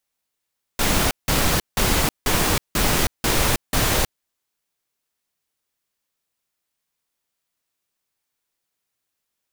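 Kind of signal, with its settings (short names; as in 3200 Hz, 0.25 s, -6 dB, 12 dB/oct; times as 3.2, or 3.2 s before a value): noise bursts pink, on 0.32 s, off 0.17 s, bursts 7, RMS -19 dBFS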